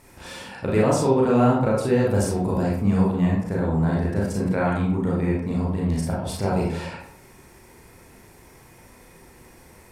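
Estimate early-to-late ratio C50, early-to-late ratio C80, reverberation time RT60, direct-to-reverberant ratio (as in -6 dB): 2.0 dB, 6.0 dB, 0.70 s, -5.0 dB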